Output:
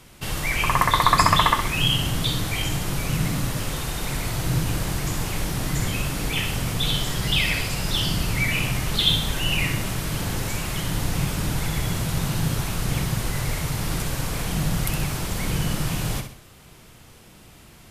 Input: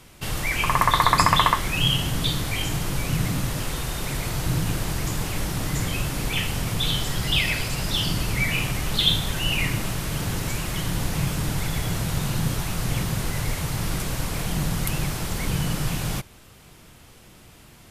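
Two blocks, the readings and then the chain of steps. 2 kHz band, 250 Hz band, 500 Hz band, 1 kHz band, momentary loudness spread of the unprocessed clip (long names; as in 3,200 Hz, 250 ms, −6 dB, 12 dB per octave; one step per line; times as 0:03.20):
+1.0 dB, +0.5 dB, +1.0 dB, +0.5 dB, 8 LU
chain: flutter between parallel walls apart 10.9 metres, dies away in 0.47 s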